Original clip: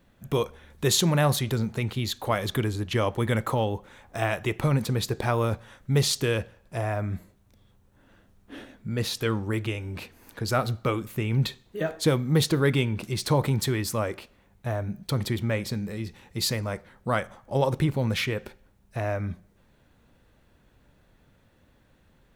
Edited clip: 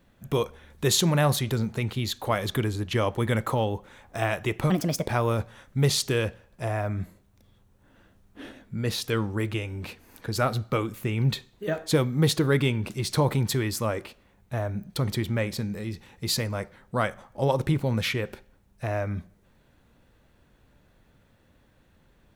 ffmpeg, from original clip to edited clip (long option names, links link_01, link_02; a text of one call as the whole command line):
ffmpeg -i in.wav -filter_complex "[0:a]asplit=3[link_01][link_02][link_03];[link_01]atrim=end=4.704[link_04];[link_02]atrim=start=4.7:end=5.2,asetpts=PTS-STARTPTS,asetrate=59535,aresample=44100,atrim=end_sample=16333,asetpts=PTS-STARTPTS[link_05];[link_03]atrim=start=5.196[link_06];[link_04][link_05]acrossfade=duration=0.004:curve1=hsin:curve2=hsin[link_07];[link_07][link_06]acrossfade=duration=0.004:curve1=hsin:curve2=hsin" out.wav